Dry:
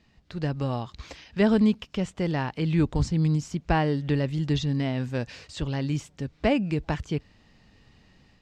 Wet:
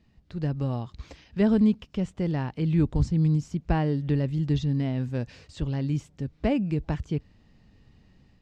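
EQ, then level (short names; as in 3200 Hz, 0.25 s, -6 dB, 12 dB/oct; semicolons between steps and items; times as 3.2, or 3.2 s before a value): low shelf 460 Hz +9.5 dB; -7.5 dB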